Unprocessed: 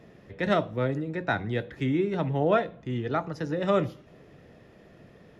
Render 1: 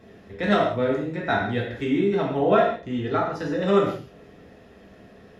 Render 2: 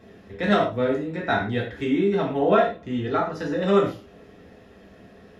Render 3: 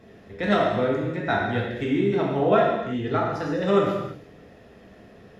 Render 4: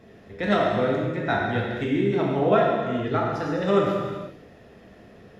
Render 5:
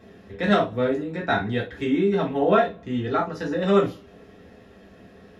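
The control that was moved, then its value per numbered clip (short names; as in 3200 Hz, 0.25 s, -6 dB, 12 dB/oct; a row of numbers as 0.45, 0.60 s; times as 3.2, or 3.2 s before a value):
non-linear reverb, gate: 210, 140, 370, 540, 90 ms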